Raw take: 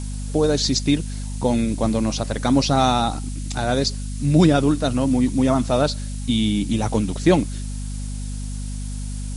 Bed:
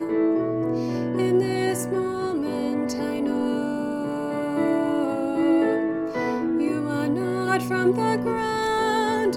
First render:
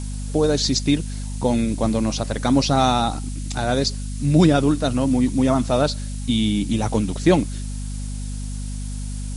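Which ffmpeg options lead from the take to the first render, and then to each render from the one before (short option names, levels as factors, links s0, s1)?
-af anull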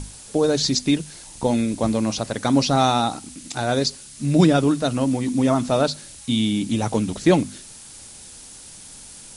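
-af "bandreject=f=50:t=h:w=6,bandreject=f=100:t=h:w=6,bandreject=f=150:t=h:w=6,bandreject=f=200:t=h:w=6,bandreject=f=250:t=h:w=6"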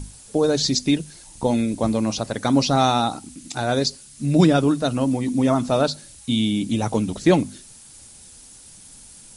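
-af "afftdn=nr=6:nf=-42"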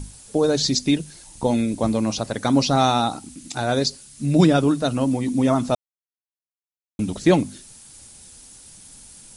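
-filter_complex "[0:a]asplit=3[s0][s1][s2];[s0]atrim=end=5.75,asetpts=PTS-STARTPTS,afade=t=out:st=5.746:d=0.004:c=hsin[s3];[s1]atrim=start=5.75:end=6.99,asetpts=PTS-STARTPTS,volume=0[s4];[s2]atrim=start=6.99,asetpts=PTS-STARTPTS,afade=t=in:d=0.004:c=hsin[s5];[s3][s4][s5]concat=n=3:v=0:a=1"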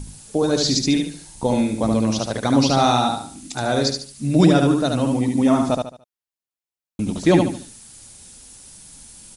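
-af "aecho=1:1:73|146|219|292:0.631|0.208|0.0687|0.0227"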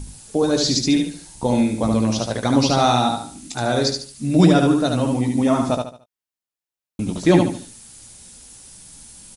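-filter_complex "[0:a]asplit=2[s0][s1];[s1]adelay=17,volume=0.299[s2];[s0][s2]amix=inputs=2:normalize=0"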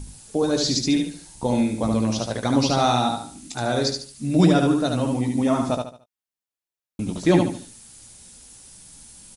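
-af "volume=0.708"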